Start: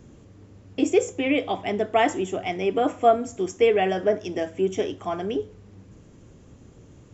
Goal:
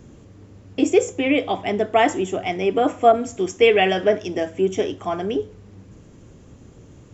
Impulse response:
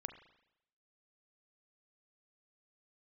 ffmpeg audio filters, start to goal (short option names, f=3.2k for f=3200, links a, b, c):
-filter_complex "[0:a]asettb=1/sr,asplit=3[a][b][c];[a]atrim=end=3.124[d];[b]atrim=start=3.12:end=4.23,asetpts=PTS-STARTPTS,afade=t=in:d=0.004:c=qsin,afade=t=out:st=1.106:d=0.004:c=qsin,adynamicequalizer=threshold=0.00794:dfrequency=2900:dqfactor=1:tfrequency=2900:tqfactor=1:attack=5:release=100:ratio=0.375:range=4:mode=boostabove:tftype=bell[e];[c]atrim=start=4.226[f];[d][e]acrossfade=d=0.004:c1=hsin:c2=qsin[g];[g][f]acrossfade=d=0.004:c1=qsin:c2=hsin,volume=3.5dB"